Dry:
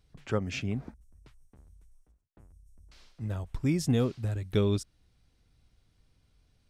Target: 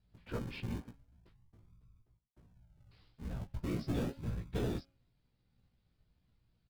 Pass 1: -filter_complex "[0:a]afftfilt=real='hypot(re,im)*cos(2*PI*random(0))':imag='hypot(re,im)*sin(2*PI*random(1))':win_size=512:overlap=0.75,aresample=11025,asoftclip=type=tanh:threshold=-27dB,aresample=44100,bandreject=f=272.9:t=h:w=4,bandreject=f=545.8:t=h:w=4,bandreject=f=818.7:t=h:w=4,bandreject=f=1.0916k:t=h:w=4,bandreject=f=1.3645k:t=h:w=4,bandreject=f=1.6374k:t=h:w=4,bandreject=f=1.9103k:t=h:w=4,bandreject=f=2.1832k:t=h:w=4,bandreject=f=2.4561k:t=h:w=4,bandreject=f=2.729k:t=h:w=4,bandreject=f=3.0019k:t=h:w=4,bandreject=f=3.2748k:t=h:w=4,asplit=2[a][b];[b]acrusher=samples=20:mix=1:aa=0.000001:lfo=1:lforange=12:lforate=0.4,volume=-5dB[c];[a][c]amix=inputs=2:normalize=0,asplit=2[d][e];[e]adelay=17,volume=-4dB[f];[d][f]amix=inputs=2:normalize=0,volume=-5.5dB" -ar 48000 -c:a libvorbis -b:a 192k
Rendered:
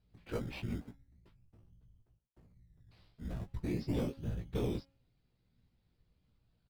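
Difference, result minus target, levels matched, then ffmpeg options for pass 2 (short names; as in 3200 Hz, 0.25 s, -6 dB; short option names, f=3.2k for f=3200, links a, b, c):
decimation with a swept rate: distortion -8 dB
-filter_complex "[0:a]afftfilt=real='hypot(re,im)*cos(2*PI*random(0))':imag='hypot(re,im)*sin(2*PI*random(1))':win_size=512:overlap=0.75,aresample=11025,asoftclip=type=tanh:threshold=-27dB,aresample=44100,bandreject=f=272.9:t=h:w=4,bandreject=f=545.8:t=h:w=4,bandreject=f=818.7:t=h:w=4,bandreject=f=1.0916k:t=h:w=4,bandreject=f=1.3645k:t=h:w=4,bandreject=f=1.6374k:t=h:w=4,bandreject=f=1.9103k:t=h:w=4,bandreject=f=2.1832k:t=h:w=4,bandreject=f=2.4561k:t=h:w=4,bandreject=f=2.729k:t=h:w=4,bandreject=f=3.0019k:t=h:w=4,bandreject=f=3.2748k:t=h:w=4,asplit=2[a][b];[b]acrusher=samples=52:mix=1:aa=0.000001:lfo=1:lforange=31.2:lforate=0.4,volume=-5dB[c];[a][c]amix=inputs=2:normalize=0,asplit=2[d][e];[e]adelay=17,volume=-4dB[f];[d][f]amix=inputs=2:normalize=0,volume=-5.5dB" -ar 48000 -c:a libvorbis -b:a 192k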